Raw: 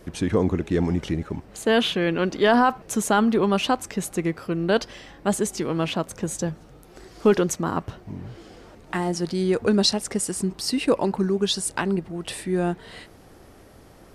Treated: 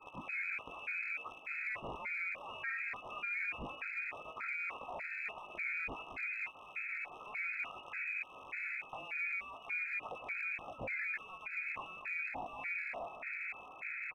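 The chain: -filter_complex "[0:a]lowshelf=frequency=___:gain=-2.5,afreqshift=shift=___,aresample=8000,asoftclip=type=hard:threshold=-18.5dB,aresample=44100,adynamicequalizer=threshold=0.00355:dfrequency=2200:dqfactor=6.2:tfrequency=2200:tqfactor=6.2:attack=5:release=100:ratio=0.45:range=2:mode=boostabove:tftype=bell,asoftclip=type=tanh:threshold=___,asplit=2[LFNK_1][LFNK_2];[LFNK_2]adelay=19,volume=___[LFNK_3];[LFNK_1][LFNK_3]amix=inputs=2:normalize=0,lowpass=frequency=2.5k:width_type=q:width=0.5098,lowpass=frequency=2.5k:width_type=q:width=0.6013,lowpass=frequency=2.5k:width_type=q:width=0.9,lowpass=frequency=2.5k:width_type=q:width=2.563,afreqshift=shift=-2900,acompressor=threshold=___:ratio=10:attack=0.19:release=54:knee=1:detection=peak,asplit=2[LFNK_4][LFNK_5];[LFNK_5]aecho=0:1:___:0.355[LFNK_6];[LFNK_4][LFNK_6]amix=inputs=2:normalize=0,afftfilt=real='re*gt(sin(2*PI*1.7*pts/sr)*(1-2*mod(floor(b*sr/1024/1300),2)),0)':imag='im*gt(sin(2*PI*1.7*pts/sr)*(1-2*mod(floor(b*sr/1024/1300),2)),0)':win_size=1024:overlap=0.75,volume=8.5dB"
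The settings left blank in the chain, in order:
330, 270, -30dB, -7dB, -43dB, 235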